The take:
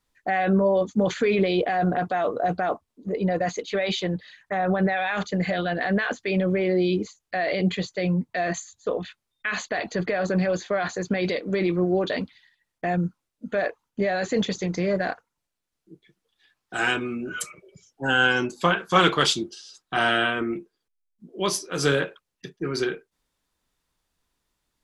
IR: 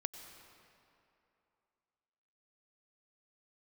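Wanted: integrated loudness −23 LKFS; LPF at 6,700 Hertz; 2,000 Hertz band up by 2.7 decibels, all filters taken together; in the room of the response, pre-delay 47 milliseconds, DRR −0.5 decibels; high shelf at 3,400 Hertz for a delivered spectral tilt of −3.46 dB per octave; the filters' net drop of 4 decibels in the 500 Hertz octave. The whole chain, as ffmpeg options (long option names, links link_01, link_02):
-filter_complex "[0:a]lowpass=6700,equalizer=frequency=500:width_type=o:gain=-5.5,equalizer=frequency=2000:width_type=o:gain=6,highshelf=frequency=3400:gain=-7,asplit=2[link_01][link_02];[1:a]atrim=start_sample=2205,adelay=47[link_03];[link_02][link_03]afir=irnorm=-1:irlink=0,volume=1.5dB[link_04];[link_01][link_04]amix=inputs=2:normalize=0,volume=-0.5dB"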